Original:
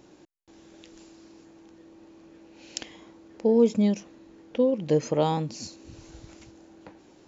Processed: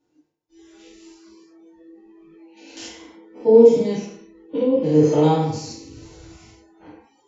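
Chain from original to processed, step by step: spectrogram pixelated in time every 100 ms; FDN reverb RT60 0.72 s, low-frequency decay 0.8×, high-frequency decay 0.8×, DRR -9.5 dB; spectral noise reduction 22 dB; trim -3 dB

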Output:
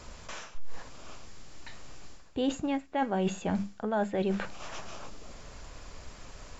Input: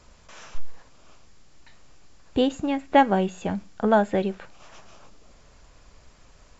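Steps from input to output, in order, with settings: hum notches 50/100/150/200 Hz; reverse; compression 16:1, threshold -33 dBFS, peak gain reduction 22 dB; reverse; trim +7 dB

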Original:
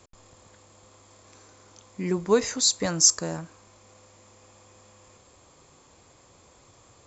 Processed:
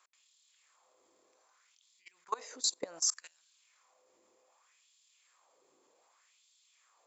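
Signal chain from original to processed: LFO high-pass sine 0.65 Hz 340–3700 Hz; level held to a coarse grid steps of 21 dB; trim -7.5 dB

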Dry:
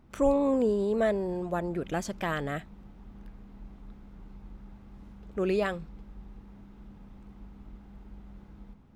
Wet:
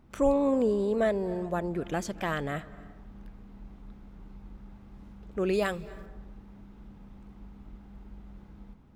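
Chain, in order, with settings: 5.53–6.06 s: treble shelf 6.1 kHz +11.5 dB; reverberation RT60 1.1 s, pre-delay 216 ms, DRR 18 dB

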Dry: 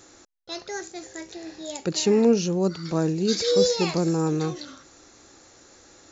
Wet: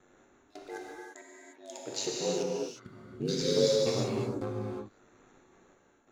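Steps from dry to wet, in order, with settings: local Wiener filter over 9 samples; 0.76–2.86 s: high-pass 450 Hz 12 dB/octave; trance gate "xxxx.xx...x...x" 136 bpm -24 dB; ring modulator 49 Hz; gated-style reverb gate 380 ms flat, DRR -3.5 dB; trim -7 dB

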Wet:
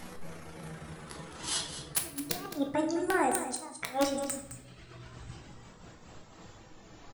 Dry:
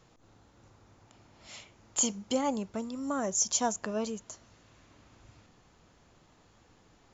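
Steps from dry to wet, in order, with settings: pitch bend over the whole clip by +8.5 st ending unshifted; reverb removal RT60 1.7 s; in parallel at +1.5 dB: compression 10:1, threshold -41 dBFS, peak gain reduction 17.5 dB; on the sum: inverted gate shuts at -20 dBFS, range -26 dB; gain riding within 4 dB 0.5 s; integer overflow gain 24.5 dB; on a send: delay 213 ms -11.5 dB; on the sum: simulated room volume 180 m³, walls mixed, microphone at 0.66 m; trim +5.5 dB

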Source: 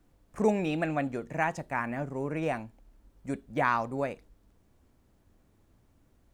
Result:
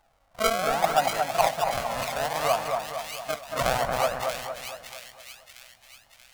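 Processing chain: decimation with a swept rate 36×, swing 100% 0.65 Hz; wow and flutter 120 cents; resonant low shelf 490 Hz -11.5 dB, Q 3; on a send: two-band feedback delay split 2 kHz, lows 229 ms, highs 634 ms, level -4 dB; on the sum: trim +5 dB

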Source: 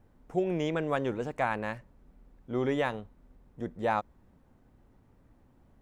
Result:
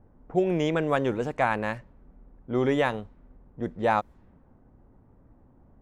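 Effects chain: level-controlled noise filter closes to 1.1 kHz, open at -29.5 dBFS; trim +5 dB

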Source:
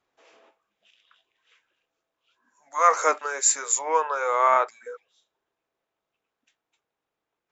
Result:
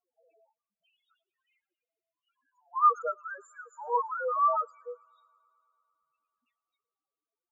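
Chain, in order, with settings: reverb removal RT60 1.8 s; loudest bins only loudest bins 2; 3.02–3.90 s: distance through air 400 m; on a send: feedback echo behind a high-pass 111 ms, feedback 79%, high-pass 2.1 kHz, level -22.5 dB

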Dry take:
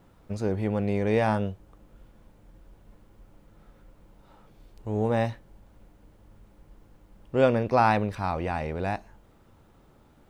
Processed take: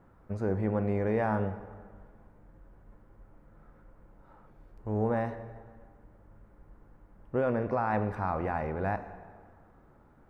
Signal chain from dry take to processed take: resonant high shelf 2.3 kHz -11.5 dB, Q 1.5; peak limiter -17.5 dBFS, peak gain reduction 9.5 dB; plate-style reverb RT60 1.8 s, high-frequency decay 0.75×, DRR 10.5 dB; trim -2.5 dB

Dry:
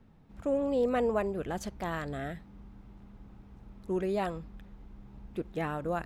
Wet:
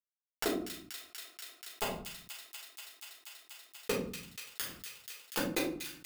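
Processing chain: octave divider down 1 oct, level +1 dB; inverted gate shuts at -28 dBFS, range -30 dB; high-pass 330 Hz 12 dB/octave; bit crusher 7-bit; tilt EQ +2 dB/octave; saturation -31.5 dBFS, distortion -17 dB; feedback echo behind a high-pass 241 ms, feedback 80%, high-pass 2.3 kHz, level -17 dB; simulated room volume 160 m³, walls furnished, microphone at 4.1 m; level flattener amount 50%; trim +9.5 dB

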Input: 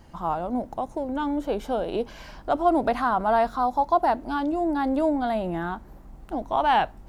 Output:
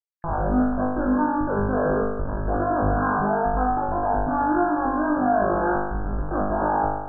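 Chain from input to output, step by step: fade-in on the opening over 1.63 s; gate with hold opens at -40 dBFS; upward compressor, threshold -38 dBFS; transient shaper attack -4 dB, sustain -8 dB; Schmitt trigger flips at -39.5 dBFS; brick-wall FIR low-pass 1.7 kHz; flutter echo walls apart 3.4 m, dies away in 1 s; swell ahead of each attack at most 130 dB/s

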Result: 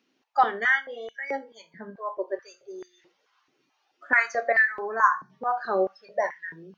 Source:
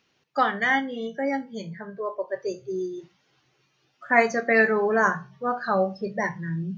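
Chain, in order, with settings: 4.52–5.30 s: static phaser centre 1.2 kHz, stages 4; step-sequenced high-pass 4.6 Hz 260–1900 Hz; trim -5.5 dB

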